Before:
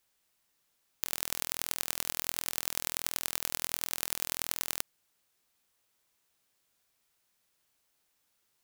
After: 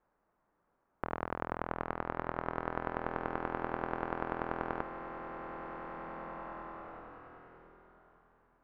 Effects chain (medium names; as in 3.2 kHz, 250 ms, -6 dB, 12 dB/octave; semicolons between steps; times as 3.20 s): low-pass 1.3 kHz 24 dB/octave; peaking EQ 94 Hz -6.5 dB 0.82 oct; swelling reverb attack 2150 ms, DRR 5 dB; trim +10 dB